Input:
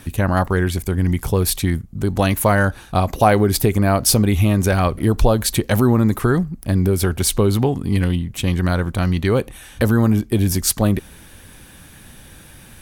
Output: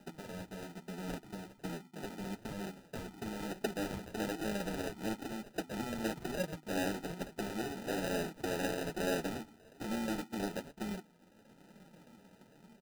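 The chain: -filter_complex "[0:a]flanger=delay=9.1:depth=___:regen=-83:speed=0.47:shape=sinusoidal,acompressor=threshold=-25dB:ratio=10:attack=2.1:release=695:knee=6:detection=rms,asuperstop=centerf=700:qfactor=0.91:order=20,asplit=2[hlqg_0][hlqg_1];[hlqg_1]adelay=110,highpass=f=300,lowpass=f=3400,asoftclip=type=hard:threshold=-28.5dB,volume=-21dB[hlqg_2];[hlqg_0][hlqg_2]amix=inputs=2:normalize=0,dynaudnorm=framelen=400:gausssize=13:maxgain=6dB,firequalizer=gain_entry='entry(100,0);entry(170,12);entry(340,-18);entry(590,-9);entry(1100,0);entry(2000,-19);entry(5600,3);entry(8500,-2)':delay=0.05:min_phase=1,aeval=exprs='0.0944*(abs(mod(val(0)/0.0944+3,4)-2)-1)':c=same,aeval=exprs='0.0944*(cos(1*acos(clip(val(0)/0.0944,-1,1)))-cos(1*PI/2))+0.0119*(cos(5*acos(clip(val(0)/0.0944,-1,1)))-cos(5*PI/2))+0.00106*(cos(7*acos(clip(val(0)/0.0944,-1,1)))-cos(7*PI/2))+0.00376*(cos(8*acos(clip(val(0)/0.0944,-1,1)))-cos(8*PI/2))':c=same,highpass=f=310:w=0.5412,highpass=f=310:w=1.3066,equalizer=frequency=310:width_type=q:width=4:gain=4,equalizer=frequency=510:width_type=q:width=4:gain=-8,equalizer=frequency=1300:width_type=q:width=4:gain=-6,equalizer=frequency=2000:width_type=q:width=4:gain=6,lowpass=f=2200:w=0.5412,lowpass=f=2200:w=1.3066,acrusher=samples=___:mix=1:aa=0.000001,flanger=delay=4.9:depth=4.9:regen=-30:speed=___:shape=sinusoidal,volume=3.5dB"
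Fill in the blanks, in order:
6, 40, 1.1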